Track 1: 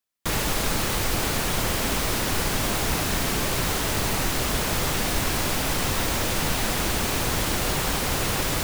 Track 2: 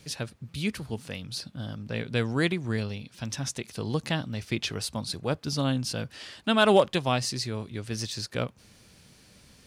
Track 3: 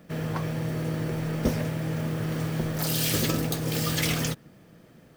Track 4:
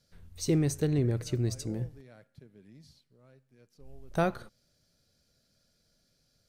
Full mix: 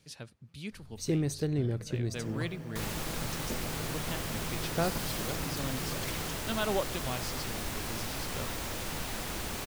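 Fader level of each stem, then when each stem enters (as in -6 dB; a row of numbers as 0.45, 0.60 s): -12.0, -11.5, -14.0, -3.0 dB; 2.50, 0.00, 2.05, 0.60 s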